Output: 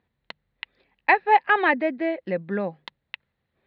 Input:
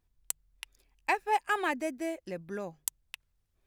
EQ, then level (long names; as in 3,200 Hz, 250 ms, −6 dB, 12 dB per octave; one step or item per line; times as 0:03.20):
high-frequency loss of the air 390 metres
loudspeaker in its box 130–4,100 Hz, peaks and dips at 200 Hz +6 dB, 520 Hz +6 dB, 820 Hz +3 dB, 1,900 Hz +8 dB, 4,100 Hz +9 dB
high-shelf EQ 2,900 Hz +6.5 dB
+8.5 dB